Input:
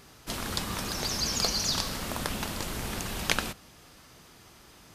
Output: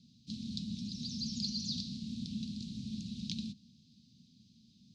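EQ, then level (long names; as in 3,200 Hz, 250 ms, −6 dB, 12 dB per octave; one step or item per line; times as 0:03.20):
Chebyshev band-stop filter 220–3,900 Hz, order 4
high-frequency loss of the air 250 metres
loudspeaker in its box 170–8,900 Hz, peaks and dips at 240 Hz +6 dB, 460 Hz +9 dB, 670 Hz +8 dB, 2,500 Hz +6 dB
+1.0 dB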